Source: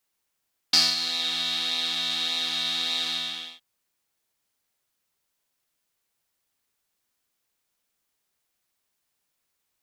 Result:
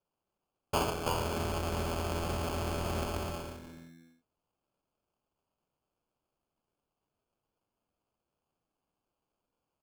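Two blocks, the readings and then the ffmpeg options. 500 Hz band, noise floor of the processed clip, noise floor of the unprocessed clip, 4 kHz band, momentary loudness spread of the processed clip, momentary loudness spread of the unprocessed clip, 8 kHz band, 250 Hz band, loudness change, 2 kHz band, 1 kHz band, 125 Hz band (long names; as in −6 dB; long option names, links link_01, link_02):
+12.0 dB, below −85 dBFS, −79 dBFS, −20.5 dB, 12 LU, 9 LU, −10.0 dB, +5.5 dB, −10.5 dB, −9.0 dB, +4.0 dB, +16.5 dB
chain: -filter_complex "[0:a]aemphasis=mode=reproduction:type=75fm,acrossover=split=310|4800[link_01][link_02][link_03];[link_03]adelay=330[link_04];[link_01]adelay=630[link_05];[link_05][link_02][link_04]amix=inputs=3:normalize=0,acrusher=samples=23:mix=1:aa=0.000001"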